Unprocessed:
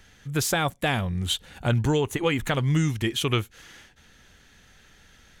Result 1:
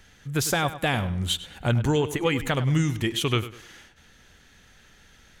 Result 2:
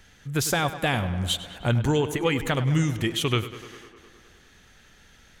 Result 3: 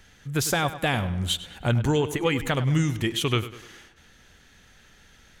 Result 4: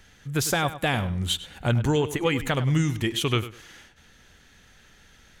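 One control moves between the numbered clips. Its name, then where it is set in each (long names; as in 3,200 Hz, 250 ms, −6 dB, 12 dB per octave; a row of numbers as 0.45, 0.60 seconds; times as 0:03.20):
tape delay, feedback: 35, 79, 52, 23%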